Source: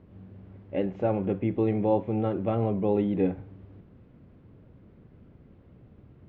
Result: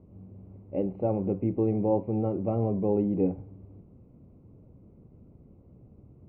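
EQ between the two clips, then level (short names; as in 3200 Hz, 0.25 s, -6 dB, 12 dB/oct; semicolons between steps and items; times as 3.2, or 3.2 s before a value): running mean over 26 samples; 0.0 dB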